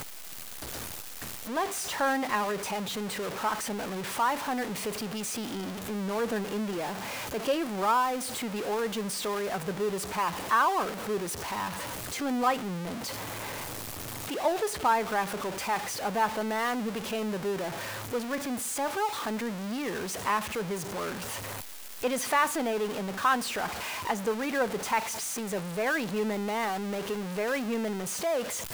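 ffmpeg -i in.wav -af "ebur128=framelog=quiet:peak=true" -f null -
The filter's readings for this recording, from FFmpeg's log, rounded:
Integrated loudness:
  I:         -30.7 LUFS
  Threshold: -40.7 LUFS
Loudness range:
  LRA:         2.8 LU
  Threshold: -50.6 LUFS
  LRA low:   -32.1 LUFS
  LRA high:  -29.4 LUFS
True peak:
  Peak:      -13.3 dBFS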